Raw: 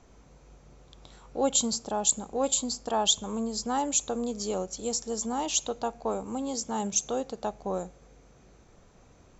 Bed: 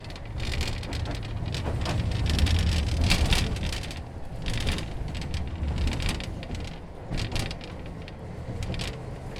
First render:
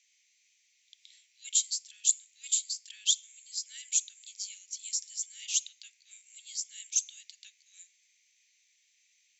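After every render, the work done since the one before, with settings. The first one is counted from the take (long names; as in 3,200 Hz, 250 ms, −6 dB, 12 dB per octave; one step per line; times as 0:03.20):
Butterworth high-pass 2,000 Hz 72 dB per octave
dynamic equaliser 3,000 Hz, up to −3 dB, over −43 dBFS, Q 0.86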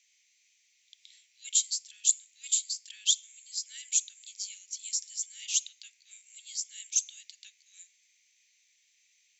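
level +1 dB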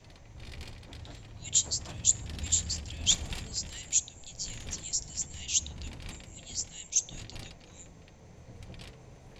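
mix in bed −15 dB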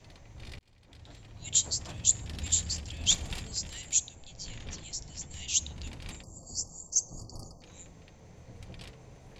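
0:00.59–0:01.48: fade in
0:04.15–0:05.31: high-frequency loss of the air 97 metres
0:06.23–0:07.62: linear-phase brick-wall band-stop 1,300–4,400 Hz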